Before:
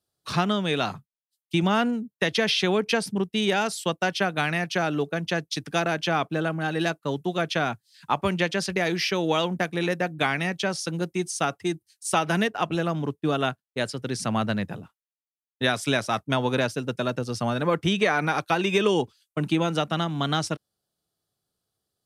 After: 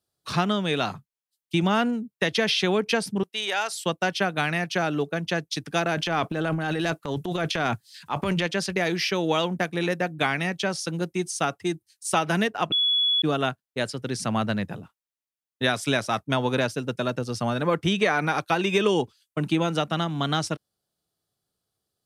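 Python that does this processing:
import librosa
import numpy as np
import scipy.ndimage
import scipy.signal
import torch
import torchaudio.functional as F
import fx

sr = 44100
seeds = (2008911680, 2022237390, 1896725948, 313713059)

y = fx.highpass(x, sr, hz=690.0, slope=12, at=(3.23, 3.74))
y = fx.transient(y, sr, attack_db=-7, sustain_db=10, at=(5.96, 8.45), fade=0.02)
y = fx.edit(y, sr, fx.bleep(start_s=12.72, length_s=0.5, hz=3390.0, db=-19.0), tone=tone)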